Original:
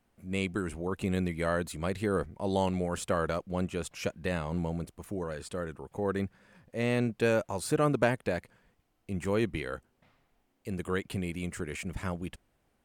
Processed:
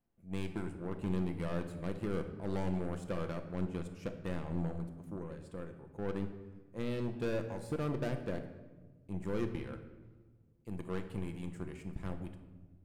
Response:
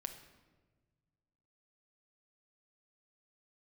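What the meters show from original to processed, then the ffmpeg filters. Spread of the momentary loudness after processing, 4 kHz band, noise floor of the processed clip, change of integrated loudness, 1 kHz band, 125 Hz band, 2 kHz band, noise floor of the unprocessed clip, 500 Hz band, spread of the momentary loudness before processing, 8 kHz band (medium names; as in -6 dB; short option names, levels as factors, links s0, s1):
12 LU, -11.5 dB, -62 dBFS, -7.0 dB, -11.0 dB, -4.5 dB, -12.5 dB, -74 dBFS, -8.5 dB, 11 LU, -16.5 dB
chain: -filter_complex "[0:a]asoftclip=type=hard:threshold=0.0562,tiltshelf=f=850:g=5,aeval=exprs='0.1*(cos(1*acos(clip(val(0)/0.1,-1,1)))-cos(1*PI/2))+0.0178*(cos(3*acos(clip(val(0)/0.1,-1,1)))-cos(3*PI/2))+0.00631*(cos(4*acos(clip(val(0)/0.1,-1,1)))-cos(4*PI/2))':c=same[s0];[1:a]atrim=start_sample=2205[s1];[s0][s1]afir=irnorm=-1:irlink=0,volume=0.562"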